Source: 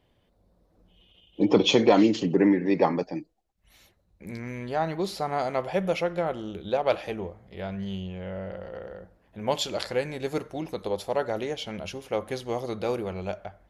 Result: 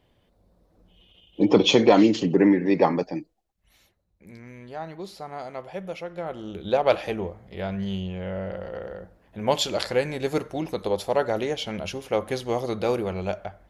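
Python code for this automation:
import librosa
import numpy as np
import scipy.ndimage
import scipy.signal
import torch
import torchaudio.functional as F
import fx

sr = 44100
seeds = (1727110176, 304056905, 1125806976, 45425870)

y = fx.gain(x, sr, db=fx.line((3.13, 2.5), (4.27, -8.0), (6.06, -8.0), (6.7, 4.0)))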